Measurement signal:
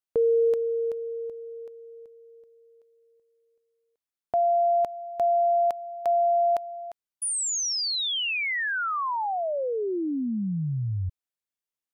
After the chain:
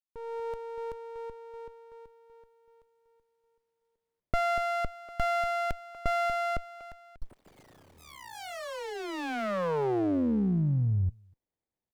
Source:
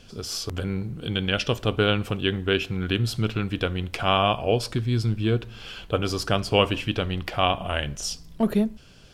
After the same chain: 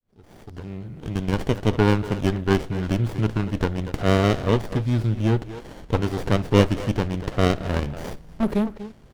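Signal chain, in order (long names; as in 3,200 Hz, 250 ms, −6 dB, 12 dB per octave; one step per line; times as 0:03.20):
fade in at the beginning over 1.69 s
far-end echo of a speakerphone 240 ms, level −11 dB
windowed peak hold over 33 samples
level +2 dB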